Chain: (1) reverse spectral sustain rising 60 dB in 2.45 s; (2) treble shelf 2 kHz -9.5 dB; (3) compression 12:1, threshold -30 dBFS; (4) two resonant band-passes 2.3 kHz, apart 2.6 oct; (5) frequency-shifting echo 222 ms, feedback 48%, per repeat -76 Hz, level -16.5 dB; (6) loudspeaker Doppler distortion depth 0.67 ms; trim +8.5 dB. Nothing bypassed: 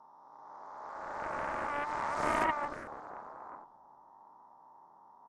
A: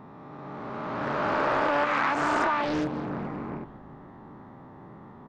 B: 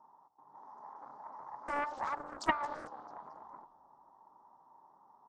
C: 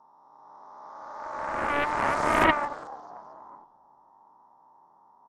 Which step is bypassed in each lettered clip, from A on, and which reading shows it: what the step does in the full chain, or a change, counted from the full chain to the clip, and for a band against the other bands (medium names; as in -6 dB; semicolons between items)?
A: 4, 8 kHz band -7.0 dB; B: 1, 125 Hz band -4.0 dB; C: 3, mean gain reduction 2.0 dB